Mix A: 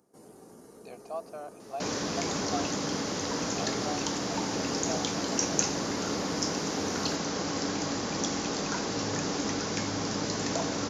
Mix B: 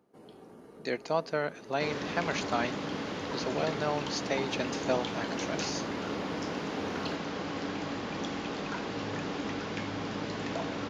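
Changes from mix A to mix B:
speech: remove formant filter a
second sound −3.5 dB
master: add high shelf with overshoot 4,400 Hz −12 dB, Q 1.5

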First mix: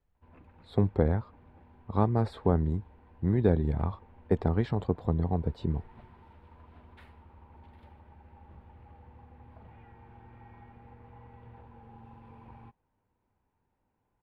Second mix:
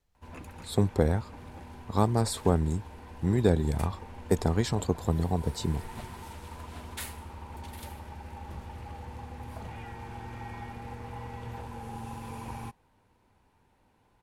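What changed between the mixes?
background +10.5 dB
master: remove high-frequency loss of the air 450 metres

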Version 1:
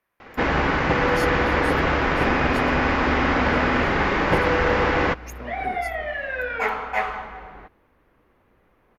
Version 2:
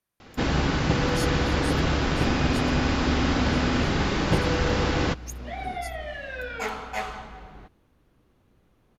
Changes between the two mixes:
speech −4.0 dB
master: add octave-band graphic EQ 125/500/1,000/2,000/4,000/8,000 Hz +4/−5/−6/−9/+4/+10 dB

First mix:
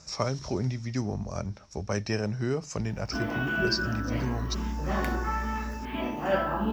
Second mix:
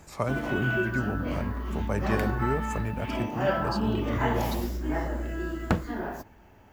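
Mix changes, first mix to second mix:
speech: remove low-pass with resonance 5,500 Hz, resonance Q 11
background: entry −2.85 s

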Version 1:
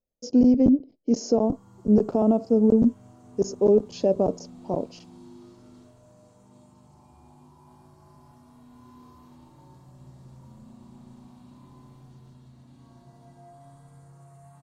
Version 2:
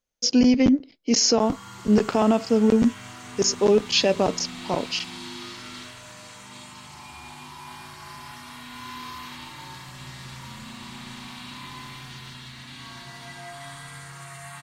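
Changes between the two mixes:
background +5.5 dB
master: remove drawn EQ curve 610 Hz 0 dB, 2,000 Hz −26 dB, 3,500 Hz −24 dB, 7,000 Hz −15 dB

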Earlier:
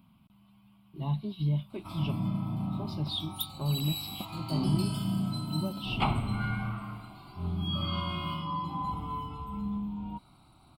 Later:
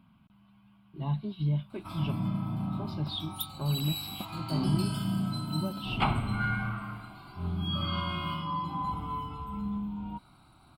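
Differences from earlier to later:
speech: add low-pass filter 3,900 Hz 6 dB per octave
master: add parametric band 1,600 Hz +9.5 dB 0.45 octaves

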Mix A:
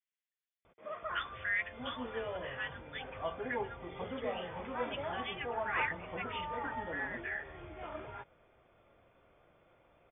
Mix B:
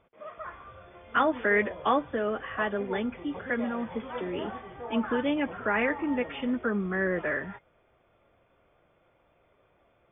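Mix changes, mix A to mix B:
speech: remove Bessel high-pass filter 2,600 Hz, order 8
background: entry −0.65 s

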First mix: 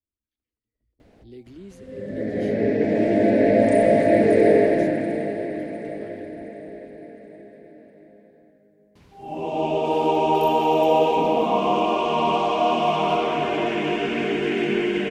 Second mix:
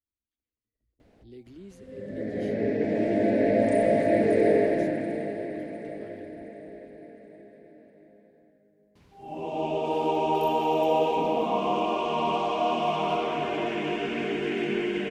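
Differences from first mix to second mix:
speech −4.0 dB
background −5.5 dB

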